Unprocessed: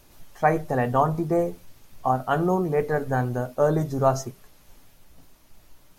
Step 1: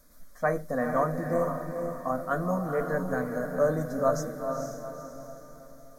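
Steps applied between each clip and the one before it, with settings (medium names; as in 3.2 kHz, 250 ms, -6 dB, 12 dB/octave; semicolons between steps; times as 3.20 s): static phaser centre 560 Hz, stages 8; echo that smears into a reverb 470 ms, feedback 43%, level -5 dB; trim -2.5 dB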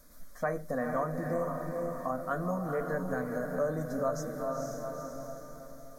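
compression 2:1, threshold -35 dBFS, peak gain reduction 9 dB; trim +1.5 dB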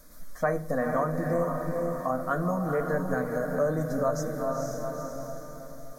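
simulated room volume 3100 m³, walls furnished, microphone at 0.55 m; trim +4.5 dB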